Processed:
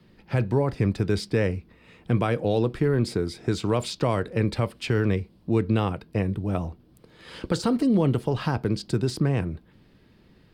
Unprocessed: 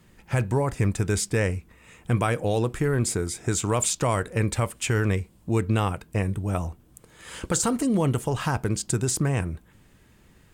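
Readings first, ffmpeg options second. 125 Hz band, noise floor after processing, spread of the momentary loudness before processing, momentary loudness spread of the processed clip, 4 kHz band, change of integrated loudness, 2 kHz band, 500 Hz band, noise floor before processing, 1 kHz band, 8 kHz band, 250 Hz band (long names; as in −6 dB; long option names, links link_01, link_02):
−0.5 dB, −57 dBFS, 6 LU, 6 LU, −0.5 dB, 0.0 dB, −3.0 dB, +1.5 dB, −57 dBFS, −2.5 dB, −15.5 dB, +2.5 dB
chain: -filter_complex "[0:a]highshelf=frequency=5700:width_type=q:width=3:gain=-7.5,acrossover=split=130|600|4800[link_01][link_02][link_03][link_04];[link_02]acontrast=87[link_05];[link_01][link_05][link_03][link_04]amix=inputs=4:normalize=0,volume=-4dB"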